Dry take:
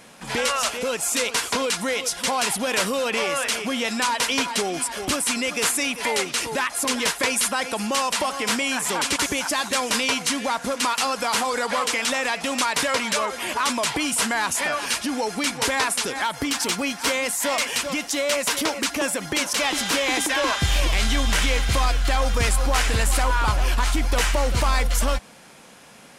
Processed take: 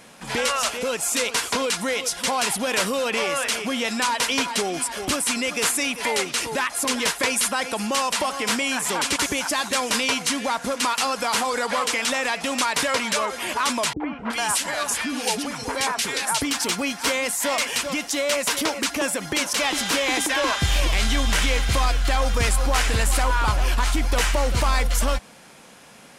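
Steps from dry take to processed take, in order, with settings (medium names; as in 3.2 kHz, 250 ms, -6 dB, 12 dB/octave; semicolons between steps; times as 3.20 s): 13.93–16.42 s: three bands offset in time lows, mids, highs 70/370 ms, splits 380/1800 Hz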